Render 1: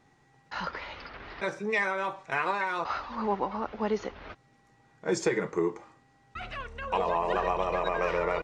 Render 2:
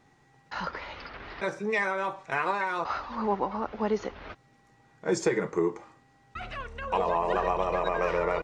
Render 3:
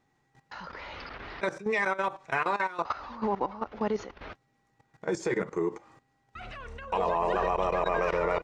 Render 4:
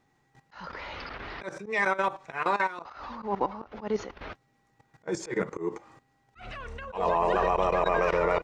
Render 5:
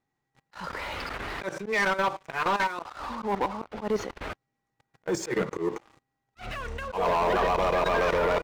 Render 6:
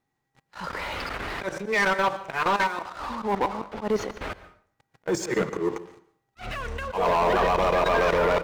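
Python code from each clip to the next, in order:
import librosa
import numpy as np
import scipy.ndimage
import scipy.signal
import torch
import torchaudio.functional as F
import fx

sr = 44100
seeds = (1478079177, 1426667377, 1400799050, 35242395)

y1 = fx.dynamic_eq(x, sr, hz=3000.0, q=0.78, threshold_db=-43.0, ratio=4.0, max_db=-3)
y1 = y1 * librosa.db_to_amplitude(1.5)
y2 = fx.level_steps(y1, sr, step_db=15)
y2 = y2 * librosa.db_to_amplitude(3.0)
y3 = fx.auto_swell(y2, sr, attack_ms=138.0)
y3 = y3 * librosa.db_to_amplitude(2.5)
y4 = fx.leveller(y3, sr, passes=3)
y4 = y4 * librosa.db_to_amplitude(-6.5)
y5 = fx.rev_plate(y4, sr, seeds[0], rt60_s=0.55, hf_ratio=0.75, predelay_ms=110, drr_db=15.5)
y5 = y5 * librosa.db_to_amplitude(2.5)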